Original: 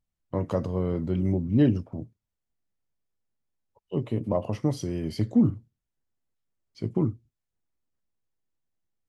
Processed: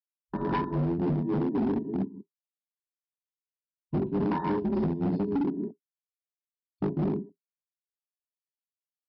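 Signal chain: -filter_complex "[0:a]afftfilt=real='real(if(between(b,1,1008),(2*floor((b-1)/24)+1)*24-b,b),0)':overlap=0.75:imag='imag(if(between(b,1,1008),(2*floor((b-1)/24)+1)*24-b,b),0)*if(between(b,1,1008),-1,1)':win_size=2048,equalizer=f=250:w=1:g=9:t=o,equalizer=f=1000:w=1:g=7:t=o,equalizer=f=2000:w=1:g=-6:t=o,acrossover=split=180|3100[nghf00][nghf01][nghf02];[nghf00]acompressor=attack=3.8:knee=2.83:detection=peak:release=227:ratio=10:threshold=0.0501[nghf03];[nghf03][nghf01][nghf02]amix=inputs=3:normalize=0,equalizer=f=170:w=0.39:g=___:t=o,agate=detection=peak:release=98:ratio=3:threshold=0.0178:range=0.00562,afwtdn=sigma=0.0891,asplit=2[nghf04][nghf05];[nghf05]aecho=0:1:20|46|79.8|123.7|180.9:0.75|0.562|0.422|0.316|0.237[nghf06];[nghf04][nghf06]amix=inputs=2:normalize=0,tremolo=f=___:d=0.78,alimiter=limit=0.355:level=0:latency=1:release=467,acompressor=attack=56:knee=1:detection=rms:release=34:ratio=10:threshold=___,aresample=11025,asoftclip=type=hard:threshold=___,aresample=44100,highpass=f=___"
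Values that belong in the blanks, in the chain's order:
14, 3.5, 0.0562, 0.0668, 40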